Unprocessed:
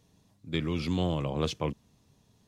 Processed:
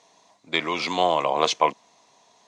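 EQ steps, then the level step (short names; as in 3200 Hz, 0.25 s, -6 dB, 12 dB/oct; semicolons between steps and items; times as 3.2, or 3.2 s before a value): speaker cabinet 490–8400 Hz, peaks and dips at 690 Hz +10 dB, 1000 Hz +10 dB, 2100 Hz +7 dB, 4000 Hz +4 dB, 6300 Hz +5 dB; +9.0 dB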